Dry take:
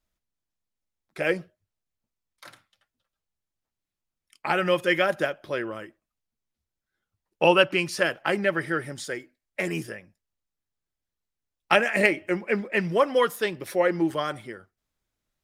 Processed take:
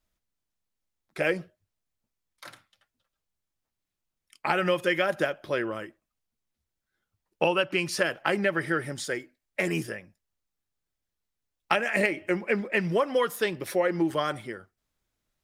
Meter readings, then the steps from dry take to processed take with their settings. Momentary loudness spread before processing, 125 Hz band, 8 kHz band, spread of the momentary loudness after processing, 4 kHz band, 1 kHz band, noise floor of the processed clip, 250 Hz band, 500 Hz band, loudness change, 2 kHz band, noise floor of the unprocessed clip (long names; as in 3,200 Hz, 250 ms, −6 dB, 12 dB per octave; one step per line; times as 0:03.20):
15 LU, −0.5 dB, +0.5 dB, 11 LU, −3.5 dB, −3.0 dB, below −85 dBFS, −1.5 dB, −2.5 dB, −2.5 dB, −2.5 dB, below −85 dBFS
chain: downward compressor 6 to 1, threshold −22 dBFS, peak gain reduction 9.5 dB
level +1.5 dB